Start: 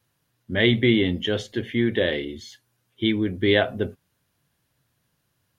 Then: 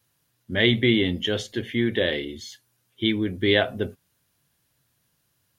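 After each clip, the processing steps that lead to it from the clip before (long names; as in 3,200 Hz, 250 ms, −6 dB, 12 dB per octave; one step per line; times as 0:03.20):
high-shelf EQ 3,600 Hz +7 dB
level −1.5 dB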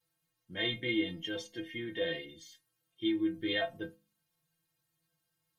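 stiff-string resonator 160 Hz, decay 0.27 s, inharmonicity 0.008
hum removal 69.34 Hz, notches 4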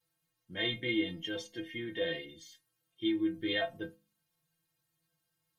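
no processing that can be heard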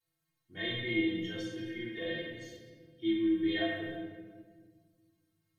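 rectangular room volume 1,700 cubic metres, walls mixed, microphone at 3.4 metres
level −7.5 dB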